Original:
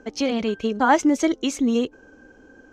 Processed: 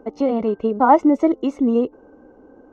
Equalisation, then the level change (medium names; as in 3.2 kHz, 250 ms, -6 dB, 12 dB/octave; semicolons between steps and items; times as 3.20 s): Savitzky-Golay filter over 65 samples; bass shelf 220 Hz -9 dB; +6.5 dB